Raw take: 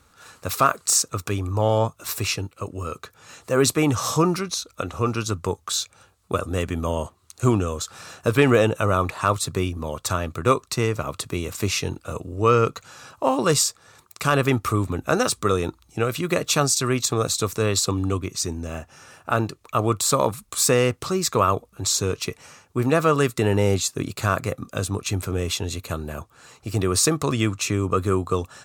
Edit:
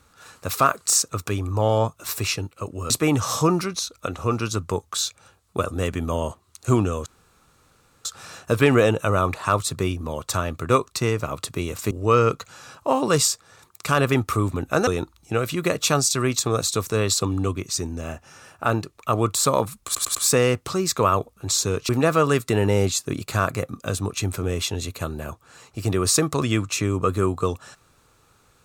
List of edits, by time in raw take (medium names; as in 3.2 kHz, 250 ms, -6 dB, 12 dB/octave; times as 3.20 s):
2.90–3.65 s: delete
7.81 s: insert room tone 0.99 s
11.67–12.27 s: delete
15.23–15.53 s: delete
20.51 s: stutter 0.10 s, 4 plays
22.25–22.78 s: delete